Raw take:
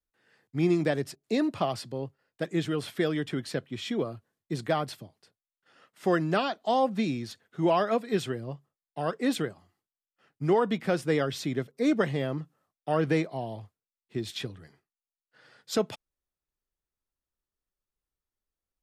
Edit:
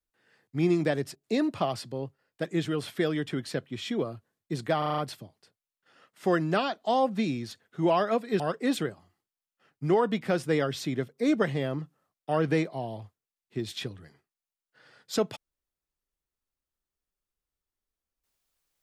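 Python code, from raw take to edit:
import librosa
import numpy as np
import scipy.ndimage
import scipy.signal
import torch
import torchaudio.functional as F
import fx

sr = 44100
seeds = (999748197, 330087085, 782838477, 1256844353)

y = fx.edit(x, sr, fx.stutter(start_s=4.78, slice_s=0.04, count=6),
    fx.cut(start_s=8.2, length_s=0.79), tone=tone)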